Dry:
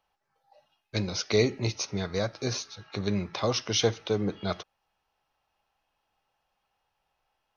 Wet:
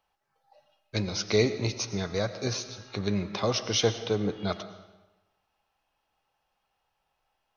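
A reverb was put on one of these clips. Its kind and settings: algorithmic reverb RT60 1.1 s, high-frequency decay 0.85×, pre-delay 65 ms, DRR 12 dB

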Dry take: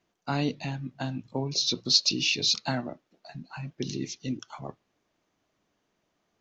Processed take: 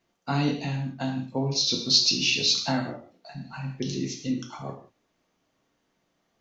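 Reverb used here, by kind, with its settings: gated-style reverb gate 210 ms falling, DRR 1 dB

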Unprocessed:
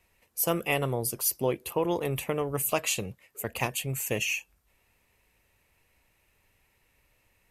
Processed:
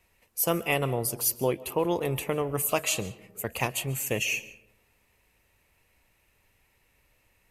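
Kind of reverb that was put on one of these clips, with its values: algorithmic reverb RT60 0.9 s, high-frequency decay 0.4×, pre-delay 100 ms, DRR 17 dB; trim +1 dB

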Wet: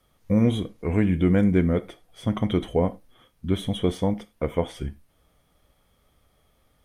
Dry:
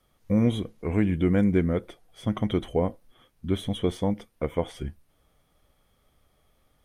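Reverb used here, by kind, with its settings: gated-style reverb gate 120 ms falling, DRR 12 dB; trim +2 dB

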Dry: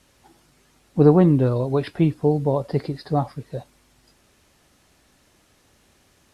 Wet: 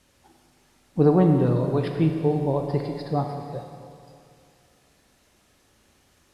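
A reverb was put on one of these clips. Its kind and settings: Schroeder reverb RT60 2.4 s, combs from 25 ms, DRR 4 dB; trim -3.5 dB

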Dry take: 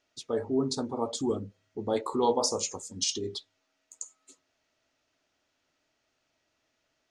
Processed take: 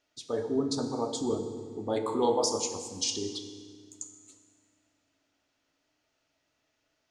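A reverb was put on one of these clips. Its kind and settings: FDN reverb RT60 1.8 s, low-frequency decay 1.5×, high-frequency decay 0.85×, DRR 6 dB; trim -1.5 dB

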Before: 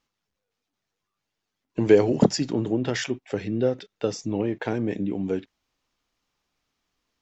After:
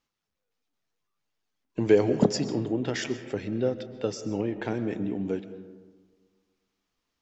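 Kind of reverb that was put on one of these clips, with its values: algorithmic reverb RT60 1.5 s, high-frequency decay 0.35×, pre-delay 90 ms, DRR 11.5 dB; trim -3.5 dB

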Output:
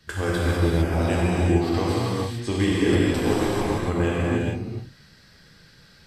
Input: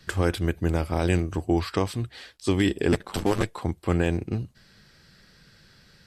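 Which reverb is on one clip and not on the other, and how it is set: gated-style reverb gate 480 ms flat, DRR -7 dB; trim -4.5 dB

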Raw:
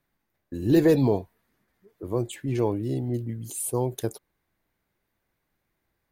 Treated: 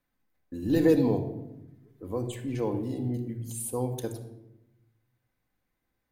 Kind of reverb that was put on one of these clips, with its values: simulated room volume 3300 m³, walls furnished, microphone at 2 m; trim -5.5 dB

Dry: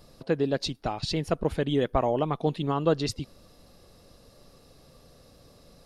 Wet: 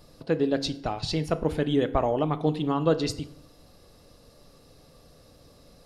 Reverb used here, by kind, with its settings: FDN reverb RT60 0.73 s, low-frequency decay 1.05×, high-frequency decay 0.65×, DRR 10.5 dB

